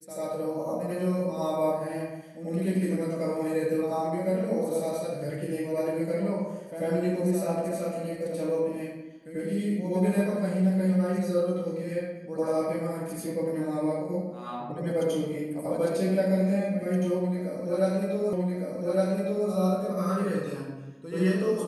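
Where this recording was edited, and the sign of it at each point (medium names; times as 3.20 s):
18.33 s: repeat of the last 1.16 s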